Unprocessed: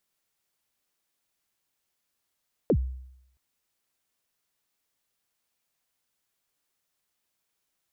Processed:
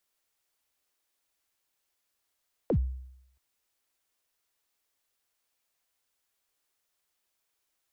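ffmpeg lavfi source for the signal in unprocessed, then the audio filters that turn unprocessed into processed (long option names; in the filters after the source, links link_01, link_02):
-f lavfi -i "aevalsrc='0.15*pow(10,-3*t/0.77)*sin(2*PI*(570*0.068/log(64/570)*(exp(log(64/570)*min(t,0.068)/0.068)-1)+64*max(t-0.068,0)))':duration=0.67:sample_rate=44100"
-filter_complex "[0:a]acrossover=split=230[link_01][link_02];[link_02]acompressor=threshold=-28dB:ratio=6[link_03];[link_01][link_03]amix=inputs=2:normalize=0,acrossover=split=120|230|600[link_04][link_05][link_06][link_07];[link_05]aeval=exprs='sgn(val(0))*max(abs(val(0))-0.00237,0)':channel_layout=same[link_08];[link_04][link_08][link_06][link_07]amix=inputs=4:normalize=0"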